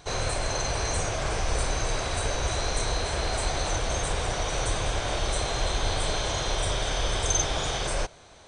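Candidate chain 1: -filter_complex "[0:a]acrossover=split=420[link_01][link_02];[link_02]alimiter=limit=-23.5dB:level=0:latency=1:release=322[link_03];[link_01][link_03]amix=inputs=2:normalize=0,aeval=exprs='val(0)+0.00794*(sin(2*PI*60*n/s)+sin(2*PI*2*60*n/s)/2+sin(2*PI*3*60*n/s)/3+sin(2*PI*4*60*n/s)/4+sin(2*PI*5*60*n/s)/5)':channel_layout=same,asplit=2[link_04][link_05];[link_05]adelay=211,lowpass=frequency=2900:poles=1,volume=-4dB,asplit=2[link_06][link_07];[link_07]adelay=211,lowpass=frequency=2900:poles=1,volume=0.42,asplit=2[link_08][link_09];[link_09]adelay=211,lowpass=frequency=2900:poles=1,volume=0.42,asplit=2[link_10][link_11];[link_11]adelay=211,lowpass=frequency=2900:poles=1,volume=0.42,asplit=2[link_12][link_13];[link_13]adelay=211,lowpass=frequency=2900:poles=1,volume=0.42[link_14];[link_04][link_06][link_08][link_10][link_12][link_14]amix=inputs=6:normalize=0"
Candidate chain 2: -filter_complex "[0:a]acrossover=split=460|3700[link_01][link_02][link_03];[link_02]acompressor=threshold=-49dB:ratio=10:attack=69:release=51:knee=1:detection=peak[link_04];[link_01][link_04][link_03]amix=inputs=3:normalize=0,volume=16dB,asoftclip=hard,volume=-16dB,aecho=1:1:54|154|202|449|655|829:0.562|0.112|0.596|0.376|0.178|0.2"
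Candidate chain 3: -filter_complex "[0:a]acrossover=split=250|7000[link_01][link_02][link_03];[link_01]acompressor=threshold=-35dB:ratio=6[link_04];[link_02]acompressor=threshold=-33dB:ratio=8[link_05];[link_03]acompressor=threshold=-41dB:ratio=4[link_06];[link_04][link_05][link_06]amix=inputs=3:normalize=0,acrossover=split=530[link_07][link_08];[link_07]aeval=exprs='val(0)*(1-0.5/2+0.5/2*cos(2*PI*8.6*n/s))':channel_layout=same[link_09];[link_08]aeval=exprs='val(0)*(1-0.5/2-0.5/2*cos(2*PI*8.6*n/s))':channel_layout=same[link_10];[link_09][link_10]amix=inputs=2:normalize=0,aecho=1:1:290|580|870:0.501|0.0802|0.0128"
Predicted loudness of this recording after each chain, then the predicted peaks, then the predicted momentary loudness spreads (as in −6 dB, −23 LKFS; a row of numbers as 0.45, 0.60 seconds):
−28.5, −28.0, −35.0 LKFS; −12.0, −12.0, −20.5 dBFS; 2, 3, 1 LU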